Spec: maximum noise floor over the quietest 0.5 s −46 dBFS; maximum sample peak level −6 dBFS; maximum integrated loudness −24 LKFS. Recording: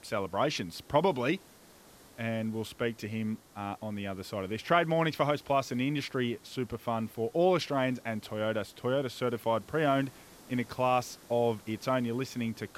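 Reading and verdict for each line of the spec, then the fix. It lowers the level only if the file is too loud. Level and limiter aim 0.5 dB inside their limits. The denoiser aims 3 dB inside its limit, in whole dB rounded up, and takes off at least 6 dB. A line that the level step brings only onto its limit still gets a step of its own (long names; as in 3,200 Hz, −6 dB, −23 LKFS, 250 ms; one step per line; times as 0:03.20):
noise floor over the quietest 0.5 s −56 dBFS: in spec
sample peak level −10.5 dBFS: in spec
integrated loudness −31.5 LKFS: in spec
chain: no processing needed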